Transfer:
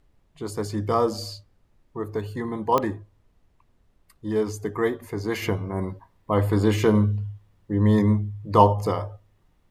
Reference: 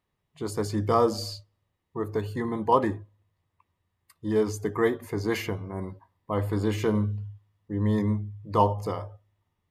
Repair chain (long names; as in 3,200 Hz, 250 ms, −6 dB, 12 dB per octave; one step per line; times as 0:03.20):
click removal
downward expander −55 dBFS, range −21 dB
level 0 dB, from 0:05.42 −6 dB